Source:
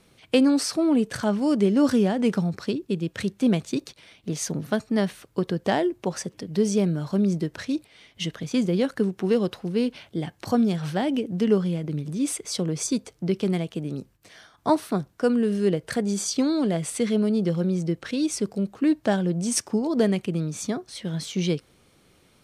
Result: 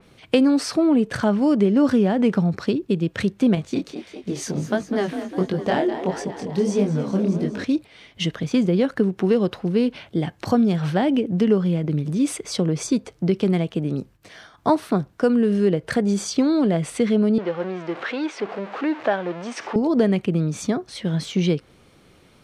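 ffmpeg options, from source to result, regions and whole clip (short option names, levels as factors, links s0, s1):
-filter_complex "[0:a]asettb=1/sr,asplit=3[s0][s1][s2];[s0]atrim=end=3.554[s3];[s1]atrim=start=3.55:end=7.64,asetpts=PTS-STARTPTS,afade=t=in:d=0.004:c=qsin,afade=t=out:st=4.086:d=0.004:c=qsin,asplit=9[s4][s5][s6][s7][s8][s9][s10][s11][s12];[s5]adelay=202,afreqshift=35,volume=0.266[s13];[s6]adelay=404,afreqshift=70,volume=0.174[s14];[s7]adelay=606,afreqshift=105,volume=0.112[s15];[s8]adelay=808,afreqshift=140,volume=0.0733[s16];[s9]adelay=1010,afreqshift=175,volume=0.0473[s17];[s10]adelay=1212,afreqshift=210,volume=0.0309[s18];[s11]adelay=1414,afreqshift=245,volume=0.02[s19];[s12]adelay=1616,afreqshift=280,volume=0.013[s20];[s4][s13][s14][s15][s16][s17][s18][s19][s20]amix=inputs=9:normalize=0,atrim=end_sample=180369,flanger=delay=19.5:depth=7.8:speed=1.5[s21];[s2]atrim=start=7.636[s22];[s3][s21]acrossfade=d=0.004:c1=hsin:c2=qsin[s23];[s23][s22]acrossfade=d=0.004:c1=qsin:c2=hsin,asettb=1/sr,asplit=3[s24][s25][s26];[s24]atrim=end=17.384[s27];[s25]atrim=start=17.38:end=19.76,asetpts=PTS-STARTPTS,afade=t=in:d=0.004:c=qsin,afade=t=out:st=2.376:d=0.004:c=qsin,aeval=exprs='val(0)+0.5*0.0299*sgn(val(0))':c=same,highpass=520,lowpass=2800[s28];[s26]atrim=start=19.756[s29];[s27][s28]acrossfade=d=0.004:c1=hsin:c2=qsin[s30];[s30][s29]acrossfade=d=0.004:c1=qsin:c2=hsin,highshelf=f=5400:g=-8.5,acompressor=threshold=0.0708:ratio=2,adynamicequalizer=threshold=0.00398:dfrequency=3800:dqfactor=0.7:tfrequency=3800:tqfactor=0.7:attack=5:release=100:ratio=0.375:range=2.5:mode=cutabove:tftype=highshelf,volume=2.11"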